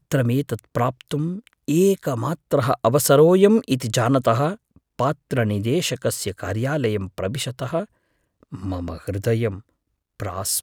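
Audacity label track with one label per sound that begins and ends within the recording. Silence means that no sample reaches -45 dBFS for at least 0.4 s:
8.430000	9.610000	sound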